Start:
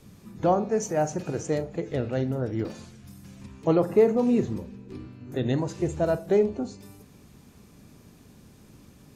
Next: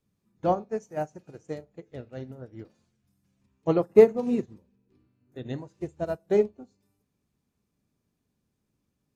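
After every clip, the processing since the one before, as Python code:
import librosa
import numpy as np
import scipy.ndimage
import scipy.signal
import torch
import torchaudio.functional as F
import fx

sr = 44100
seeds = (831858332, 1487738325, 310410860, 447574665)

y = fx.upward_expand(x, sr, threshold_db=-35.0, expansion=2.5)
y = F.gain(torch.from_numpy(y), 5.5).numpy()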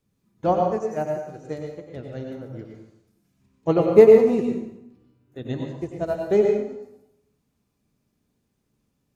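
y = fx.rev_plate(x, sr, seeds[0], rt60_s=0.81, hf_ratio=0.85, predelay_ms=80, drr_db=1.5)
y = F.gain(torch.from_numpy(y), 3.0).numpy()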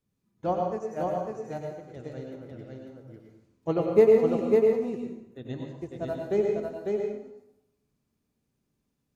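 y = x + 10.0 ** (-3.5 / 20.0) * np.pad(x, (int(549 * sr / 1000.0), 0))[:len(x)]
y = F.gain(torch.from_numpy(y), -7.0).numpy()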